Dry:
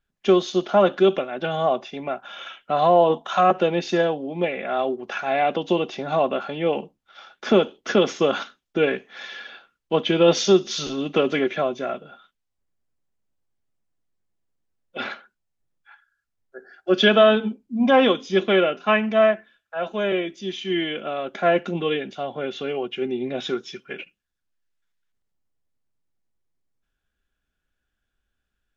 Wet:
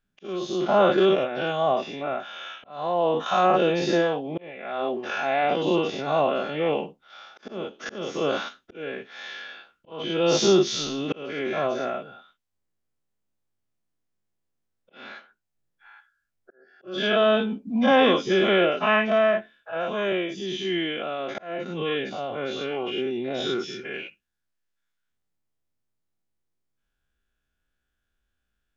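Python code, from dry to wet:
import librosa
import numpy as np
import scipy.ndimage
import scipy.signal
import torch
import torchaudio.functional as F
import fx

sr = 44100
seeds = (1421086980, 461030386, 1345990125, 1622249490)

y = fx.spec_dilate(x, sr, span_ms=120)
y = fx.auto_swell(y, sr, attack_ms=583.0)
y = F.gain(torch.from_numpy(y), -5.5).numpy()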